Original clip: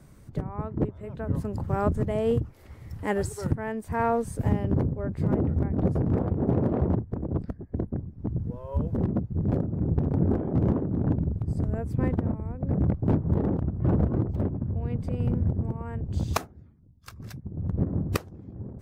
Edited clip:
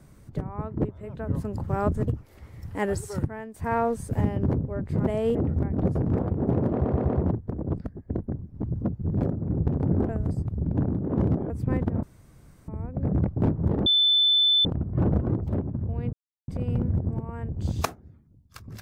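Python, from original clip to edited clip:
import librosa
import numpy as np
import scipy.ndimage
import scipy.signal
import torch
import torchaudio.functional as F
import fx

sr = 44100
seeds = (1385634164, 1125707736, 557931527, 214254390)

y = fx.edit(x, sr, fx.move(start_s=2.08, length_s=0.28, to_s=5.35),
    fx.fade_out_to(start_s=3.44, length_s=0.38, floor_db=-11.0),
    fx.stutter(start_s=6.73, slice_s=0.12, count=4),
    fx.cut(start_s=8.46, length_s=0.67),
    fx.reverse_span(start_s=10.4, length_s=1.41),
    fx.insert_room_tone(at_s=12.34, length_s=0.65),
    fx.insert_tone(at_s=13.52, length_s=0.79, hz=3520.0, db=-17.0),
    fx.insert_silence(at_s=15.0, length_s=0.35), tone=tone)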